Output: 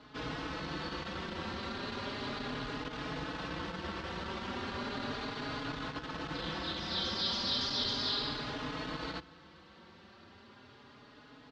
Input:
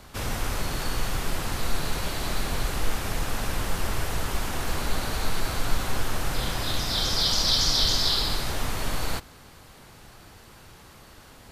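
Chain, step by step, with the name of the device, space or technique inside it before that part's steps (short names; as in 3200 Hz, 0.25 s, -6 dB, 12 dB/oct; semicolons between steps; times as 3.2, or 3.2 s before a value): barber-pole flanger into a guitar amplifier (endless flanger 4.3 ms +0.35 Hz; soft clip -21 dBFS, distortion -18 dB; speaker cabinet 110–4300 Hz, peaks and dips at 110 Hz -7 dB, 270 Hz +5 dB, 720 Hz -5 dB, 2300 Hz -4 dB); gain -1.5 dB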